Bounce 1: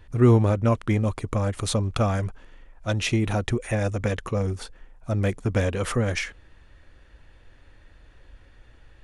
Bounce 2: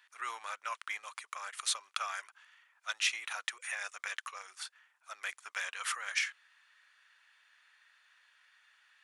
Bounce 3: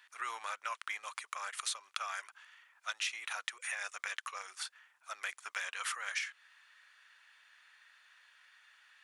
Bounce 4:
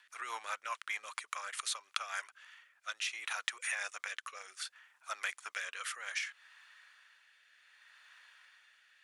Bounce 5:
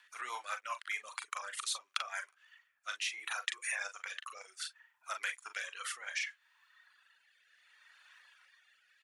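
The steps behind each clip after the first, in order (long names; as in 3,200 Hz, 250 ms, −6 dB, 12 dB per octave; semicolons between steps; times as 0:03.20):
high-pass filter 1,200 Hz 24 dB per octave; level −2.5 dB
downward compressor 3 to 1, threshold −39 dBFS, peak gain reduction 10 dB; level +3 dB
rotating-speaker cabinet horn 5 Hz, later 0.65 Hz, at 0:01.90; level +3.5 dB
ambience of single reflections 40 ms −6 dB, 52 ms −13.5 dB; reverb reduction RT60 1.5 s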